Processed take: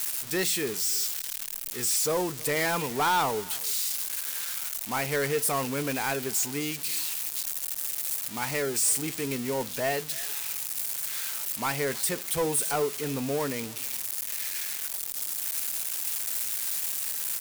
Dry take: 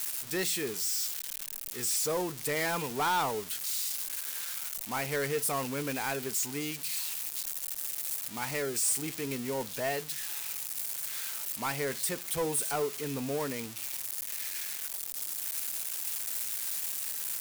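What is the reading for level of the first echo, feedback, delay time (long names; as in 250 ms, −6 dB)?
−23.0 dB, repeats not evenly spaced, 317 ms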